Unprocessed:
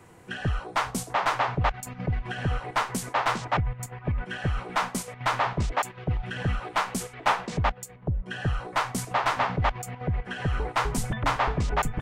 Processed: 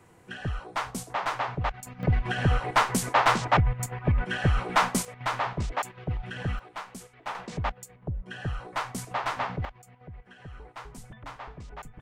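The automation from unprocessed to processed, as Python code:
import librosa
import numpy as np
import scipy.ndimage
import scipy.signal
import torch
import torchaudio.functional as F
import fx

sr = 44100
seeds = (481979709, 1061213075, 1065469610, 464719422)

y = fx.gain(x, sr, db=fx.steps((0.0, -4.5), (2.03, 4.0), (5.05, -3.5), (6.59, -12.5), (7.35, -5.0), (9.65, -17.0)))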